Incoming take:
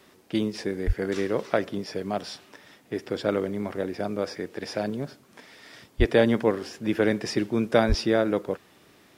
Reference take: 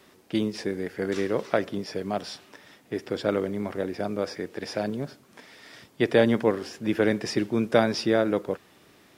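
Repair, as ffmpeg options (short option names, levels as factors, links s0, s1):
-filter_complex "[0:a]asplit=3[s0][s1][s2];[s0]afade=t=out:st=0.86:d=0.02[s3];[s1]highpass=f=140:w=0.5412,highpass=f=140:w=1.3066,afade=t=in:st=0.86:d=0.02,afade=t=out:st=0.98:d=0.02[s4];[s2]afade=t=in:st=0.98:d=0.02[s5];[s3][s4][s5]amix=inputs=3:normalize=0,asplit=3[s6][s7][s8];[s6]afade=t=out:st=5.98:d=0.02[s9];[s7]highpass=f=140:w=0.5412,highpass=f=140:w=1.3066,afade=t=in:st=5.98:d=0.02,afade=t=out:st=6.1:d=0.02[s10];[s8]afade=t=in:st=6.1:d=0.02[s11];[s9][s10][s11]amix=inputs=3:normalize=0,asplit=3[s12][s13][s14];[s12]afade=t=out:st=7.88:d=0.02[s15];[s13]highpass=f=140:w=0.5412,highpass=f=140:w=1.3066,afade=t=in:st=7.88:d=0.02,afade=t=out:st=8:d=0.02[s16];[s14]afade=t=in:st=8:d=0.02[s17];[s15][s16][s17]amix=inputs=3:normalize=0"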